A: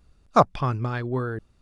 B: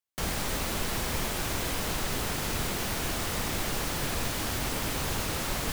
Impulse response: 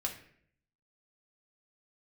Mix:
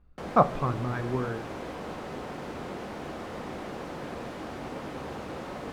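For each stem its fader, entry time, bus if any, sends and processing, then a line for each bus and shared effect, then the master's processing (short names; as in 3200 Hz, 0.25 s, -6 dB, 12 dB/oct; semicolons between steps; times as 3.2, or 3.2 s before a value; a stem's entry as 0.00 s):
-7.0 dB, 0.00 s, send -5 dB, LPF 2000 Hz 12 dB/oct
-3.5 dB, 0.00 s, send -7 dB, band-pass 450 Hz, Q 0.66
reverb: on, RT60 0.60 s, pre-delay 4 ms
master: dry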